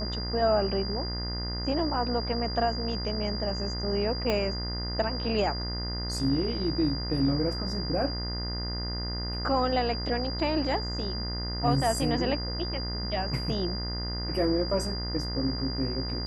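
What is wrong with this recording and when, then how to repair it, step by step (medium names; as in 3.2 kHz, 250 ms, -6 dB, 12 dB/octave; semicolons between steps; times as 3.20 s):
buzz 60 Hz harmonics 35 -34 dBFS
whine 4.8 kHz -35 dBFS
4.30 s: pop -14 dBFS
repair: de-click; band-stop 4.8 kHz, Q 30; de-hum 60 Hz, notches 35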